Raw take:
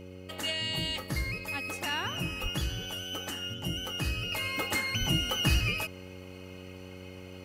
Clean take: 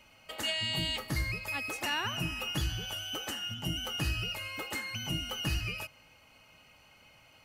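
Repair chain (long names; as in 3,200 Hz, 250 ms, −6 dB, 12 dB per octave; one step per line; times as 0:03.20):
hum removal 92.3 Hz, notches 6
0:02.42–0:02.54: high-pass filter 140 Hz 24 dB per octave
0:04.32: level correction −6.5 dB
0:04.99–0:05.11: high-pass filter 140 Hz 24 dB per octave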